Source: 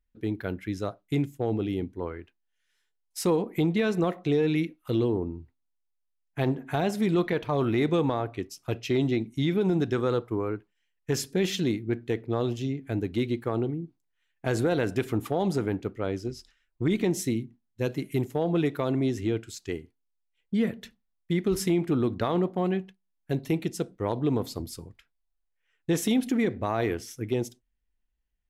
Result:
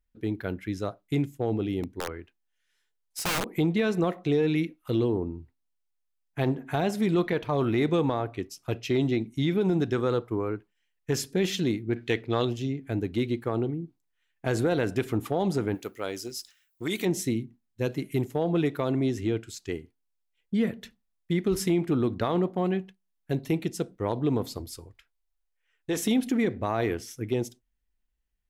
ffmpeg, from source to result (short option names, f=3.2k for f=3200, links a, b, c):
-filter_complex "[0:a]asplit=3[a][b][c];[a]afade=t=out:st=1.83:d=0.02[d];[b]aeval=exprs='(mod(13.3*val(0)+1,2)-1)/13.3':c=same,afade=t=in:st=1.83:d=0.02,afade=t=out:st=3.49:d=0.02[e];[c]afade=t=in:st=3.49:d=0.02[f];[d][e][f]amix=inputs=3:normalize=0,asettb=1/sr,asplit=3[g][h][i];[g]atrim=end=11.964[j];[h]atrim=start=11.96:end=12.45,asetpts=PTS-STARTPTS,afade=t=in:d=0.004:c=qsin,afade=t=out:st=0.486:d=0.004:c=qsin,equalizer=f=3.2k:w=0.47:g=11.5[k];[i]atrim=start=12.446[l];[j][k]acrossfade=d=0.004:c1=hsin:c2=qsin[m];[m][l]acrossfade=d=0.004:c1=qsin:c2=hsin,asplit=3[n][o][p];[n]afade=t=out:st=15.74:d=0.02[q];[o]aemphasis=mode=production:type=riaa,afade=t=in:st=15.74:d=0.02,afade=t=out:st=17.04:d=0.02[r];[p]afade=t=in:st=17.04:d=0.02[s];[q][r][s]amix=inputs=3:normalize=0,asettb=1/sr,asplit=3[t][u][v];[t]atrim=end=24.574[w];[u]atrim=start=24.57:end=25.97,asetpts=PTS-STARTPTS,afade=t=in:d=0.004:c=qsin,afade=t=out:st=1.396:d=0.004:c=qsin,equalizer=f=190:w=1.4:g=-11[x];[v]atrim=start=25.966[y];[w][x]acrossfade=d=0.004:c1=hsin:c2=qsin[z];[z][y]acrossfade=d=0.004:c1=qsin:c2=hsin"